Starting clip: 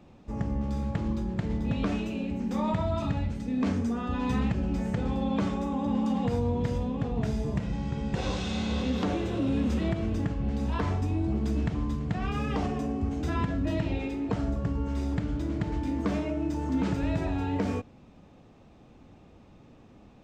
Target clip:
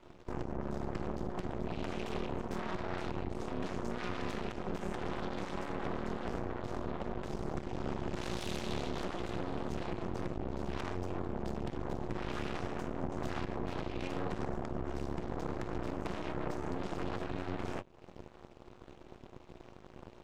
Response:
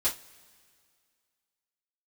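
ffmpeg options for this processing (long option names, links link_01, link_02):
-filter_complex "[0:a]asettb=1/sr,asplit=3[link_01][link_02][link_03];[link_01]atrim=end=3.424[link_04];[link_02]atrim=start=3.42:end=6.05,asetpts=PTS-STARTPTS,afade=type=in:duration=0.004:curve=qsin,afade=type=out:start_time=2.626:duration=0.004:curve=qsin,highpass=frequency=170:poles=1[link_05];[link_03]atrim=start=6.046[link_06];[link_04][link_05]acrossfade=duration=0.004:curve1=hsin:curve2=qsin[link_07];[link_07][link_06]acrossfade=duration=0.004:curve1=qsin:curve2=hsin,acompressor=threshold=-38dB:ratio=10,aeval=exprs='(tanh(100*val(0)+0.55)-tanh(0.55))/100':channel_layout=same,flanger=delay=6.1:depth=9.7:regen=61:speed=0.18:shape=triangular,aeval=exprs='val(0)*sin(2*PI*180*n/s)':channel_layout=same,aeval=exprs='0.0119*(cos(1*acos(clip(val(0)/0.0119,-1,1)))-cos(1*PI/2))+0.00335*(cos(3*acos(clip(val(0)/0.0119,-1,1)))-cos(3*PI/2))+0.00335*(cos(6*acos(clip(val(0)/0.0119,-1,1)))-cos(6*PI/2))':channel_layout=same,volume=14dB"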